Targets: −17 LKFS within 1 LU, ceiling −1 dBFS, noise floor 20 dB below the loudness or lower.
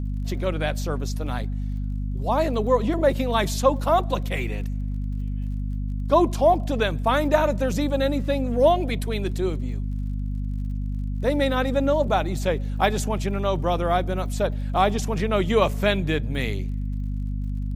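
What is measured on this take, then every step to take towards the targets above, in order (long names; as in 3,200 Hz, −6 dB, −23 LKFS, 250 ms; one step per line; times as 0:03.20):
crackle rate 41 per second; mains hum 50 Hz; hum harmonics up to 250 Hz; level of the hum −25 dBFS; integrated loudness −24.0 LKFS; sample peak −5.0 dBFS; target loudness −17.0 LKFS
→ click removal
hum removal 50 Hz, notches 5
level +7 dB
brickwall limiter −1 dBFS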